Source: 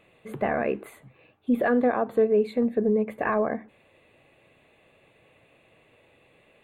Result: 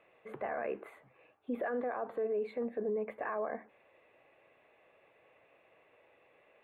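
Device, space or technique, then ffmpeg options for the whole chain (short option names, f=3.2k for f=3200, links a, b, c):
DJ mixer with the lows and highs turned down: -filter_complex "[0:a]acrossover=split=390 2500:gain=0.178 1 0.126[a][b][c];[a][b][c]amix=inputs=3:normalize=0,alimiter=level_in=1.5dB:limit=-24dB:level=0:latency=1:release=18,volume=-1.5dB,volume=-2.5dB"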